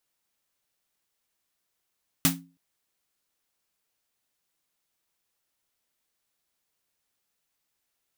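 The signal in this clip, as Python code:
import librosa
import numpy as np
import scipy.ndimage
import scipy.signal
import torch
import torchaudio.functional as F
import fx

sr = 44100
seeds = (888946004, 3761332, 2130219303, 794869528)

y = fx.drum_snare(sr, seeds[0], length_s=0.32, hz=170.0, second_hz=270.0, noise_db=4, noise_from_hz=610.0, decay_s=0.37, noise_decay_s=0.19)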